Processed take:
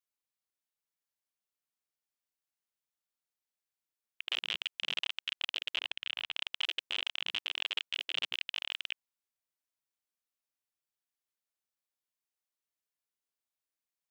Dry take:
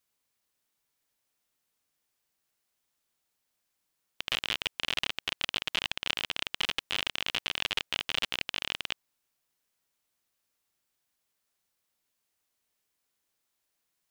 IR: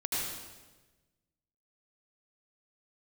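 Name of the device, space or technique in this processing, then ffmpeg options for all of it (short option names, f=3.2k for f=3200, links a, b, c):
saturation between pre-emphasis and de-emphasis: -filter_complex "[0:a]lowshelf=f=300:g=-4.5,highshelf=f=11k:g=9.5,asoftclip=type=tanh:threshold=-23.5dB,highshelf=f=11k:g=-9.5,afwtdn=0.00355,asettb=1/sr,asplit=3[a][b][c];[a]atrim=end=5.774[d];[b]atrim=start=5.77:end=6.35,asetpts=PTS-STARTPTS,afade=t=in:d=0.004:c=qsin,afade=t=out:st=0.576:d=0.004:c=qsin,bass=f=250:g=13,treble=f=4k:g=-7[e];[c]atrim=start=6.346[f];[d][e]acrossfade=d=0.004:c1=hsin:c2=qsin[g];[g][f]acrossfade=d=0.004:c1=qsin:c2=hsin,volume=3dB"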